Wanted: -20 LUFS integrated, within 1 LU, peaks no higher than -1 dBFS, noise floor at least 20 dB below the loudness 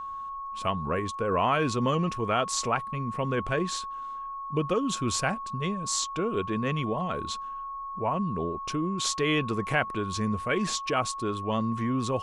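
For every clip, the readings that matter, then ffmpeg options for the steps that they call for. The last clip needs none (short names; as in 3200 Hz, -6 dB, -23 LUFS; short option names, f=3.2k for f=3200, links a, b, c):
steady tone 1100 Hz; tone level -34 dBFS; loudness -29.0 LUFS; peak -10.5 dBFS; loudness target -20.0 LUFS
-> -af "bandreject=f=1.1k:w=30"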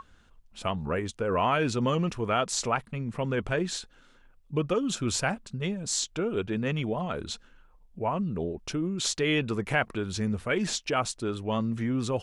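steady tone none; loudness -29.5 LUFS; peak -11.0 dBFS; loudness target -20.0 LUFS
-> -af "volume=9.5dB"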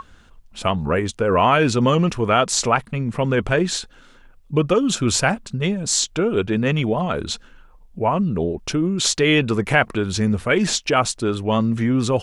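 loudness -20.0 LUFS; peak -1.5 dBFS; noise floor -49 dBFS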